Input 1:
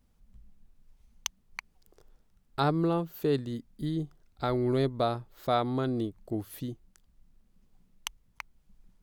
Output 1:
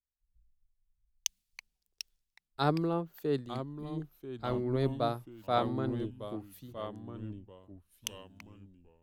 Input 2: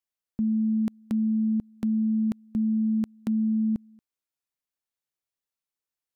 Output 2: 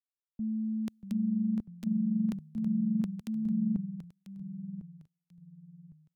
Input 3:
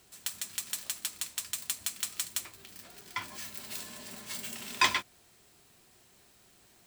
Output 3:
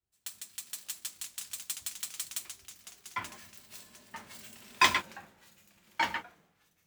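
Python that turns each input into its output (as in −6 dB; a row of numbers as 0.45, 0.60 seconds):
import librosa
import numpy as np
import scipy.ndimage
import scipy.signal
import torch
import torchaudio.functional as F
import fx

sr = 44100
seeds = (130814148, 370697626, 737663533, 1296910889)

y = fx.echo_pitch(x, sr, ms=591, semitones=-2, count=3, db_per_echo=-6.0)
y = fx.band_widen(y, sr, depth_pct=100)
y = y * librosa.db_to_amplitude(-6.0)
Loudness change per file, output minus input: −4.0, −6.0, +0.5 LU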